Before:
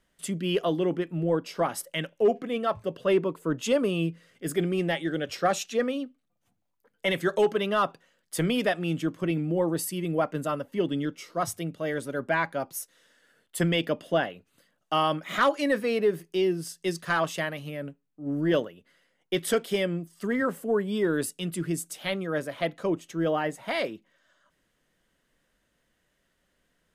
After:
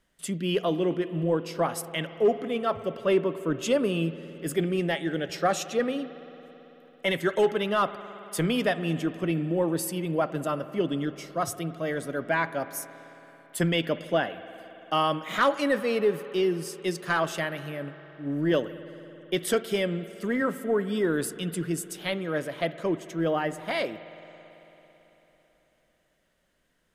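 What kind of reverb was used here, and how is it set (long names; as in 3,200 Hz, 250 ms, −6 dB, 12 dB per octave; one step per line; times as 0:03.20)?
spring reverb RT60 3.9 s, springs 55 ms, chirp 40 ms, DRR 13 dB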